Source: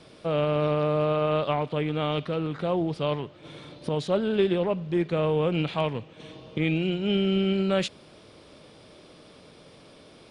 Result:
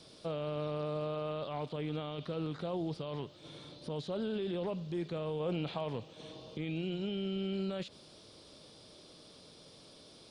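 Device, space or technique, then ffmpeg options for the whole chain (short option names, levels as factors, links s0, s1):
over-bright horn tweeter: -filter_complex "[0:a]highshelf=f=3100:t=q:w=1.5:g=10.5,alimiter=limit=0.0841:level=0:latency=1:release=20,acrossover=split=2800[s0][s1];[s1]acompressor=threshold=0.00316:ratio=4:attack=1:release=60[s2];[s0][s2]amix=inputs=2:normalize=0,asettb=1/sr,asplit=3[s3][s4][s5];[s3]atrim=end=5.404[s6];[s4]atrim=start=5.4:end=6.55,asetpts=PTS-STARTPTS,afade=t=in:d=0.004:c=qsin,afade=t=out:st=1.146:d=0.004:c=qsin,equalizer=f=680:t=o:w=1.6:g=4.5[s7];[s5]atrim=start=6.546[s8];[s6][s7]acrossfade=d=0.004:c1=hsin:c2=qsin[s9];[s9][s8]acrossfade=d=0.004:c1=qsin:c2=hsin,volume=0.447"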